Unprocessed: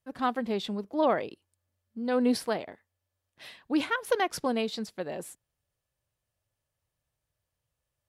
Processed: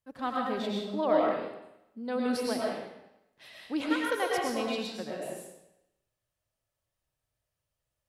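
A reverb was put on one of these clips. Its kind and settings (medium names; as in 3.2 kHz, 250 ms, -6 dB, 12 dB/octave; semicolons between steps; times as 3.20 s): algorithmic reverb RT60 0.87 s, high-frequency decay 0.95×, pre-delay 70 ms, DRR -3 dB; trim -5.5 dB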